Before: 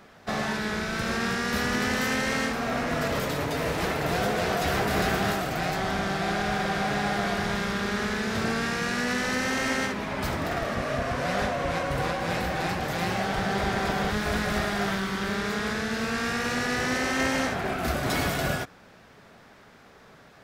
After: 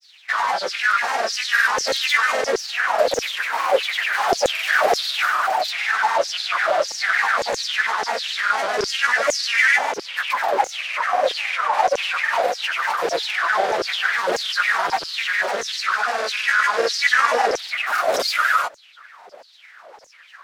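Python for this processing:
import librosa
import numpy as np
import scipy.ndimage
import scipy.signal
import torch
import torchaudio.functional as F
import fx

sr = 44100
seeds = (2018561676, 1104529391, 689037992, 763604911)

y = fx.filter_lfo_highpass(x, sr, shape='saw_down', hz=1.6, low_hz=460.0, high_hz=6000.0, q=7.8)
y = fx.granulator(y, sr, seeds[0], grain_ms=100.0, per_s=20.0, spray_ms=100.0, spread_st=3)
y = y * 10.0 ** (3.5 / 20.0)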